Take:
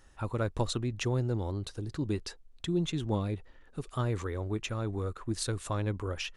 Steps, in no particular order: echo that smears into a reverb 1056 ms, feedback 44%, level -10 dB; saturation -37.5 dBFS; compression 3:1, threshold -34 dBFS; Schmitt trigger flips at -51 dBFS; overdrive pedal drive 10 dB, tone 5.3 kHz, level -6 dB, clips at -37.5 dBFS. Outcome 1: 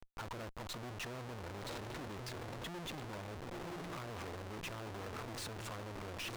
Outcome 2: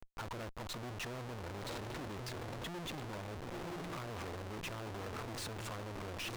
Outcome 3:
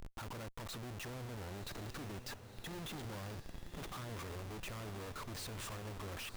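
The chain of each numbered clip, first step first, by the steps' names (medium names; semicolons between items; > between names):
echo that smears into a reverb > compression > saturation > Schmitt trigger > overdrive pedal; echo that smears into a reverb > compression > Schmitt trigger > saturation > overdrive pedal; compression > saturation > overdrive pedal > Schmitt trigger > echo that smears into a reverb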